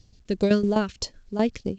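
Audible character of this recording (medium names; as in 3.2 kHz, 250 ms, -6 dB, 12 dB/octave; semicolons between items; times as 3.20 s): tremolo saw down 7.9 Hz, depth 75%; phasing stages 2, 3.1 Hz, lowest notch 790–1600 Hz; A-law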